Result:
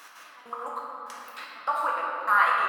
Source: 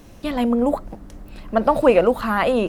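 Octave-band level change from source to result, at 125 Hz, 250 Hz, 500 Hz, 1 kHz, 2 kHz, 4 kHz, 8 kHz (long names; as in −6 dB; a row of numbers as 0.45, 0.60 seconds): below −35 dB, −32.5 dB, −21.5 dB, −1.0 dB, +1.5 dB, −7.5 dB, can't be measured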